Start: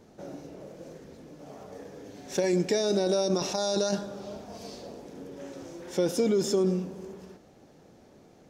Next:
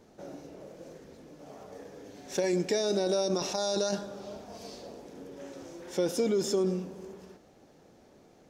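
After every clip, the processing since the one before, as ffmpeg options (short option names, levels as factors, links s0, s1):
-af "equalizer=f=130:w=0.65:g=-3.5,volume=0.841"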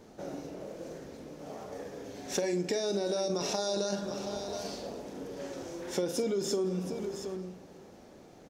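-filter_complex "[0:a]asplit=2[s0][s1];[s1]aecho=0:1:45|721:0.335|0.188[s2];[s0][s2]amix=inputs=2:normalize=0,acompressor=threshold=0.0251:ratio=6,volume=1.58"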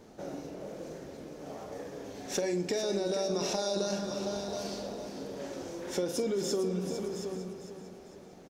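-af "asoftclip=type=tanh:threshold=0.133,aecho=1:1:452|904|1356|1808:0.316|0.126|0.0506|0.0202"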